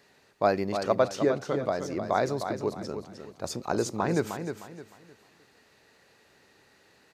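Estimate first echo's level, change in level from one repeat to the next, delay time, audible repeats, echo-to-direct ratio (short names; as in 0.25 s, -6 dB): -8.0 dB, -10.0 dB, 0.307 s, 3, -7.5 dB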